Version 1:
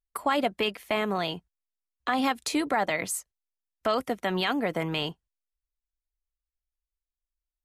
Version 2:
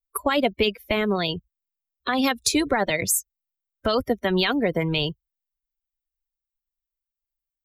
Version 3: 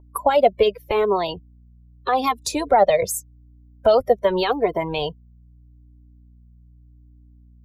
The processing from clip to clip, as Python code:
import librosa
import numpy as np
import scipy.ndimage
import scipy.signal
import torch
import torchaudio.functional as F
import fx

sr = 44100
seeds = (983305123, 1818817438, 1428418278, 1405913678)

y1 = fx.bin_expand(x, sr, power=2.0)
y1 = fx.low_shelf_res(y1, sr, hz=650.0, db=10.5, q=1.5)
y1 = fx.spectral_comp(y1, sr, ratio=2.0)
y2 = fx.add_hum(y1, sr, base_hz=60, snr_db=21)
y2 = fx.band_shelf(y2, sr, hz=670.0, db=13.0, octaves=1.7)
y2 = fx.comb_cascade(y2, sr, direction='falling', hz=0.84)